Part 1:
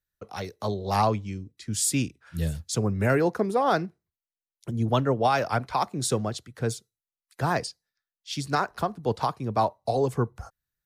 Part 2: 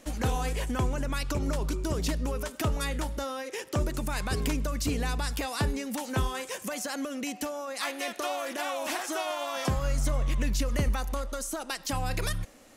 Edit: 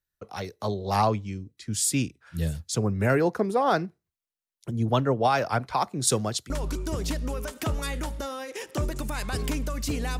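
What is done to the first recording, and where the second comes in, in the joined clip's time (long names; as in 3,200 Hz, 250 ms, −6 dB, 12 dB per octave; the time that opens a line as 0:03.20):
part 1
0:06.07–0:06.50: high-shelf EQ 3,100 Hz +10.5 dB
0:06.50: continue with part 2 from 0:01.48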